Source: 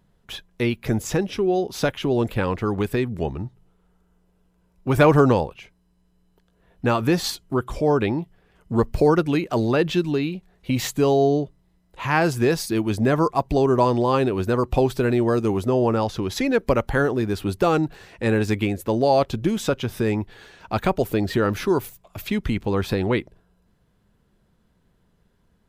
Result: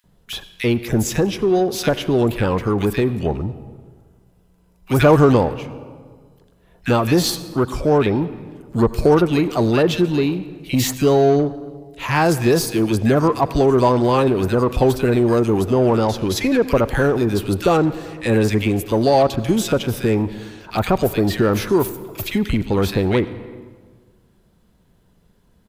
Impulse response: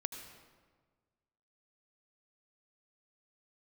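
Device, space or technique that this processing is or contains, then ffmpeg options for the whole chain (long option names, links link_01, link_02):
saturated reverb return: -filter_complex "[0:a]highshelf=frequency=9200:gain=5,acrossover=split=1600[link_01][link_02];[link_01]adelay=40[link_03];[link_03][link_02]amix=inputs=2:normalize=0,asplit=2[link_04][link_05];[1:a]atrim=start_sample=2205[link_06];[link_05][link_06]afir=irnorm=-1:irlink=0,asoftclip=type=tanh:threshold=-23dB,volume=-3.5dB[link_07];[link_04][link_07]amix=inputs=2:normalize=0,volume=2dB"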